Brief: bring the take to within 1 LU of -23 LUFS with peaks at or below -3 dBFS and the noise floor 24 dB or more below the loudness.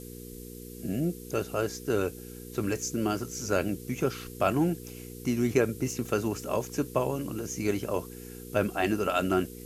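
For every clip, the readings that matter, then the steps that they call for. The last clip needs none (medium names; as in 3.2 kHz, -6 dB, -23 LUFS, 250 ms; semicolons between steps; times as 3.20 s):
hum 60 Hz; highest harmonic 480 Hz; hum level -42 dBFS; noise floor -44 dBFS; noise floor target -54 dBFS; loudness -30.0 LUFS; peak level -11.0 dBFS; loudness target -23.0 LUFS
-> de-hum 60 Hz, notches 8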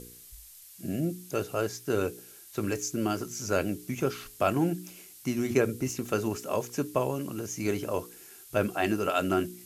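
hum not found; noise floor -51 dBFS; noise floor target -55 dBFS
-> noise print and reduce 6 dB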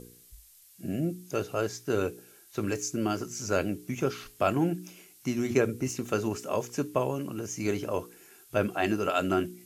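noise floor -57 dBFS; loudness -30.5 LUFS; peak level -11.0 dBFS; loudness target -23.0 LUFS
-> trim +7.5 dB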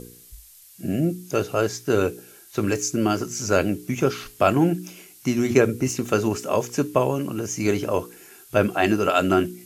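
loudness -23.0 LUFS; peak level -3.5 dBFS; noise floor -49 dBFS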